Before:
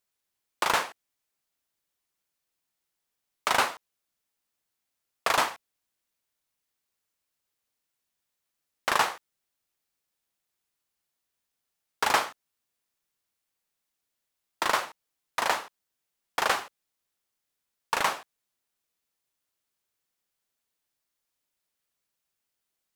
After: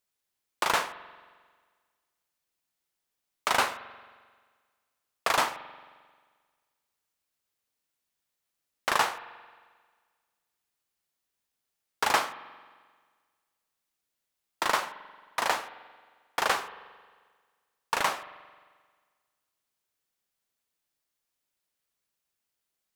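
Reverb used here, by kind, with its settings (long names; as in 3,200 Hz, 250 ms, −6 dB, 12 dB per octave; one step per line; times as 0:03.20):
spring reverb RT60 1.6 s, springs 44 ms, chirp 65 ms, DRR 14 dB
level −1 dB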